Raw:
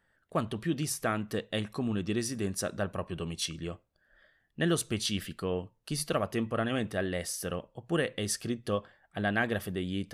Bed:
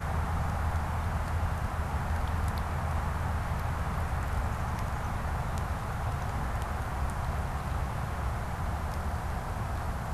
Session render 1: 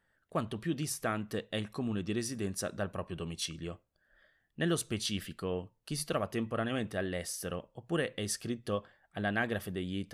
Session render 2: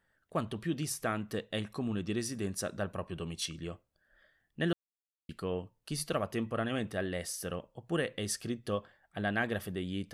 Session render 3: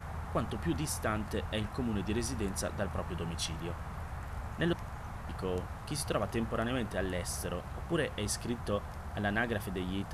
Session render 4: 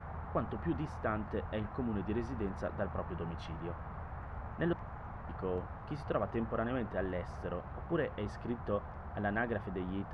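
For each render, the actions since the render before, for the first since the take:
trim -3 dB
4.73–5.29 s: mute
add bed -9.5 dB
low-pass 1.5 kHz 12 dB/octave; bass shelf 260 Hz -4 dB

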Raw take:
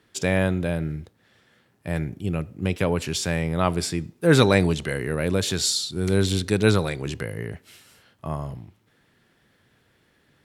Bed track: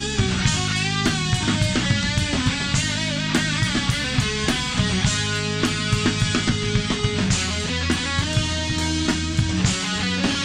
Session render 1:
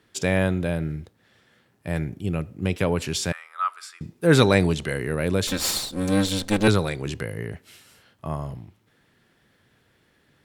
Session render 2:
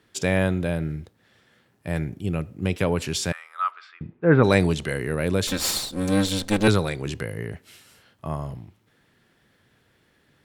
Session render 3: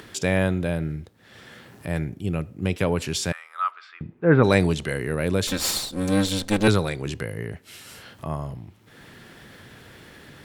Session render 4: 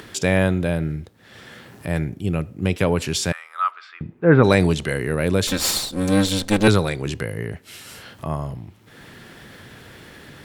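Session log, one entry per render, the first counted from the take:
3.32–4.01 s: ladder high-pass 1.2 kHz, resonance 80%; 5.47–6.68 s: comb filter that takes the minimum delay 3.8 ms
3.70–4.43 s: low-pass 4.3 kHz -> 1.7 kHz 24 dB/octave
upward compressor, threshold -31 dBFS
trim +3.5 dB; peak limiter -2 dBFS, peak gain reduction 2.5 dB

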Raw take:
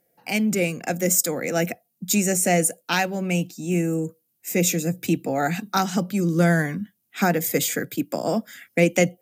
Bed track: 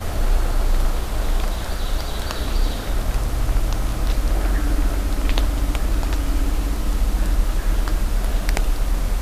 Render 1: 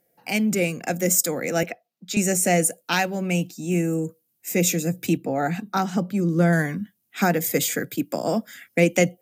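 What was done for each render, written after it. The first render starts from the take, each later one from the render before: 1.63–2.17 s: three-band isolator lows -13 dB, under 370 Hz, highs -18 dB, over 5.2 kHz; 5.17–6.53 s: treble shelf 2.3 kHz -9 dB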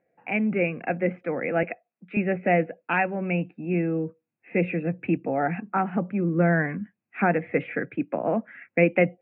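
Chebyshev low-pass 2.6 kHz, order 6; bass shelf 210 Hz -4 dB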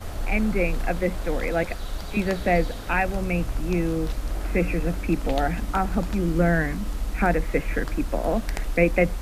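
add bed track -8.5 dB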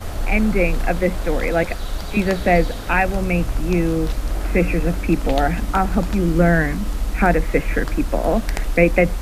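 trim +5.5 dB; peak limiter -3 dBFS, peak gain reduction 2 dB

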